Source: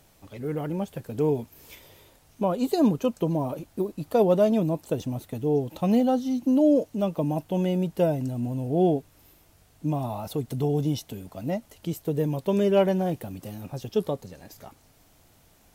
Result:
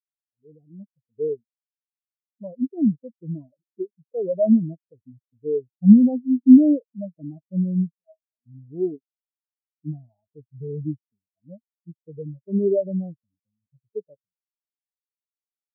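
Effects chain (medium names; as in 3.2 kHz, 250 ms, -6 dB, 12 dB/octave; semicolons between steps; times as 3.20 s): 7.96–8.46 s: inharmonic resonator 210 Hz, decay 0.29 s, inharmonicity 0.002; loudness maximiser +16 dB; spectral contrast expander 4:1; trim -1 dB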